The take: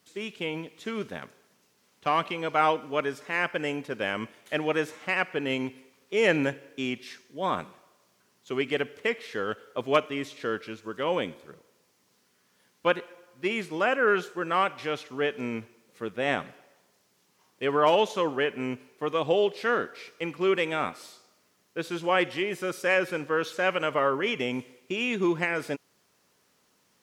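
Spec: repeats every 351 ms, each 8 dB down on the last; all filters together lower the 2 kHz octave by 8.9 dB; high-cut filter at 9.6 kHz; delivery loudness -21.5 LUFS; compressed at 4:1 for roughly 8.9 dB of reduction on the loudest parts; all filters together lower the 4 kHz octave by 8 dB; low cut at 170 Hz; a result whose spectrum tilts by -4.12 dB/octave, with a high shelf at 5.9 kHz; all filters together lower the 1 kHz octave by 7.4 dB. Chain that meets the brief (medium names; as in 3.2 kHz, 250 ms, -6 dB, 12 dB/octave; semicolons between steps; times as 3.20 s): high-pass 170 Hz; low-pass 9.6 kHz; peaking EQ 1 kHz -7.5 dB; peaking EQ 2 kHz -7.5 dB; peaking EQ 4 kHz -9 dB; treble shelf 5.9 kHz +6 dB; compression 4:1, threshold -32 dBFS; feedback delay 351 ms, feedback 40%, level -8 dB; trim +15.5 dB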